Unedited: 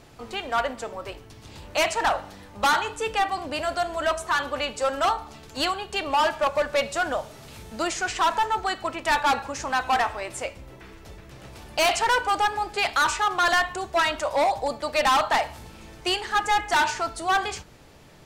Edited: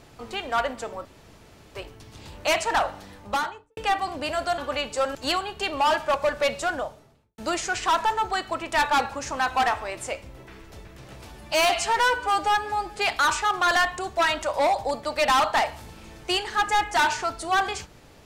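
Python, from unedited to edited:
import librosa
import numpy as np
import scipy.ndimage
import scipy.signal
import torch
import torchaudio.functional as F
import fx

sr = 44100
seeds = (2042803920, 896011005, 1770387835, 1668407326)

y = fx.studio_fade_out(x, sr, start_s=2.44, length_s=0.63)
y = fx.studio_fade_out(y, sr, start_s=6.88, length_s=0.83)
y = fx.edit(y, sr, fx.insert_room_tone(at_s=1.05, length_s=0.7),
    fx.cut(start_s=3.88, length_s=0.54),
    fx.cut(start_s=4.99, length_s=0.49),
    fx.stretch_span(start_s=11.62, length_s=1.12, factor=1.5), tone=tone)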